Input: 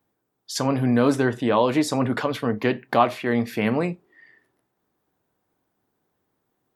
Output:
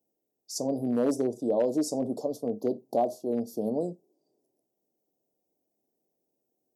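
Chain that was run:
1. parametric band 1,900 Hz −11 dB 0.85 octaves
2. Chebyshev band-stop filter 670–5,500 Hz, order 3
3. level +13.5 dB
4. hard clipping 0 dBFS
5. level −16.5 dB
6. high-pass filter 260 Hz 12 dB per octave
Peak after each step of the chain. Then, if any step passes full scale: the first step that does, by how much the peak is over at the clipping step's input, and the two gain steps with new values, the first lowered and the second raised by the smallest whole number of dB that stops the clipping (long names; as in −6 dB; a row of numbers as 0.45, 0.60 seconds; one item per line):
−7.5, −9.0, +4.5, 0.0, −16.5, −14.5 dBFS
step 3, 4.5 dB
step 3 +8.5 dB, step 5 −11.5 dB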